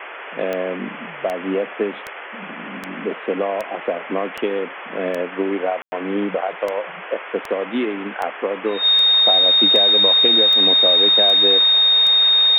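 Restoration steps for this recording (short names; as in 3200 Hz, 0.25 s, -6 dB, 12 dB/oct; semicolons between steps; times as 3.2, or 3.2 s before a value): de-click; notch 3700 Hz, Q 30; room tone fill 5.82–5.92; noise print and reduce 29 dB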